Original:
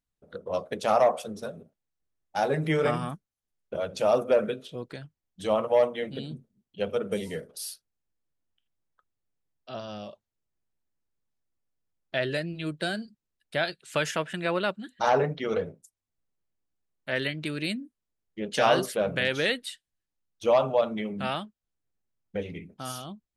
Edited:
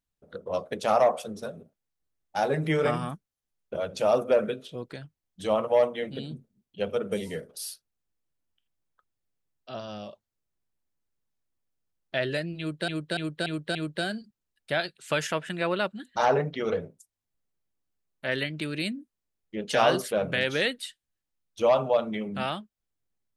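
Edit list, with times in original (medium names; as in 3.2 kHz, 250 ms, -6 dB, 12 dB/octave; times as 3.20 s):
12.59–12.88 s: loop, 5 plays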